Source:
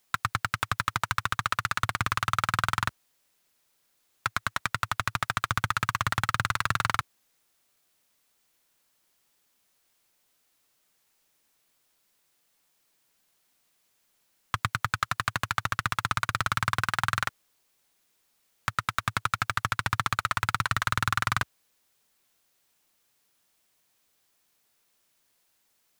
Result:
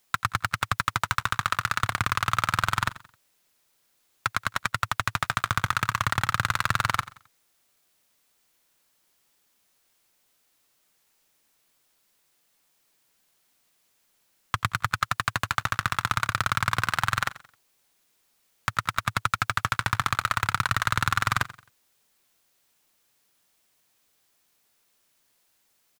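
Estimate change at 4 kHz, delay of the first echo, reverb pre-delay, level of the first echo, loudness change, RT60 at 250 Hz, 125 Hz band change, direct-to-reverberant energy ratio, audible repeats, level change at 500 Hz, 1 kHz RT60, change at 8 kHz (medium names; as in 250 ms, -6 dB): +2.0 dB, 88 ms, no reverb, -17.5 dB, +2.0 dB, no reverb, +2.0 dB, no reverb, 2, +2.0 dB, no reverb, +2.0 dB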